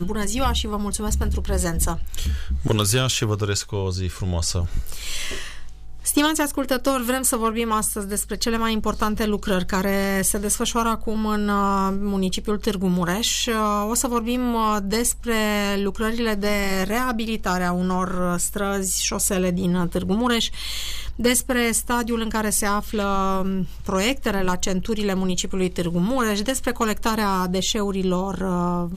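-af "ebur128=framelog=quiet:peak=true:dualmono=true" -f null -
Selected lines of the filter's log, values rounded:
Integrated loudness:
  I:         -19.6 LUFS
  Threshold: -29.7 LUFS
Loudness range:
  LRA:         1.8 LU
  Threshold: -39.6 LUFS
  LRA low:   -20.5 LUFS
  LRA high:  -18.8 LUFS
True peak:
  Peak:       -8.4 dBFS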